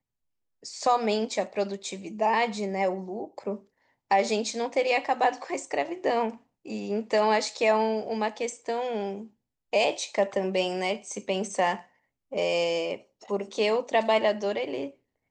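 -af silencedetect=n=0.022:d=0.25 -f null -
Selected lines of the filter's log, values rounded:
silence_start: 0.00
silence_end: 0.65 | silence_duration: 0.65
silence_start: 3.56
silence_end: 4.11 | silence_duration: 0.55
silence_start: 6.31
silence_end: 6.67 | silence_duration: 0.37
silence_start: 9.22
silence_end: 9.73 | silence_duration: 0.52
silence_start: 11.78
silence_end: 12.33 | silence_duration: 0.55
silence_start: 12.96
silence_end: 13.30 | silence_duration: 0.34
silence_start: 14.88
silence_end: 15.31 | silence_duration: 0.43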